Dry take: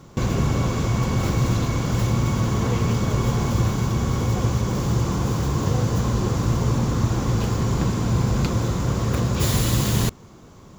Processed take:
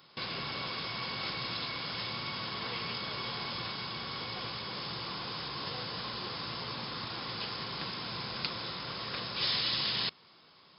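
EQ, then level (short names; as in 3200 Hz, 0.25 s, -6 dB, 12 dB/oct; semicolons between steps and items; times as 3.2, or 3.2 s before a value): brick-wall FIR low-pass 5300 Hz; differentiator; bell 160 Hz +5.5 dB 0.31 oct; +7.0 dB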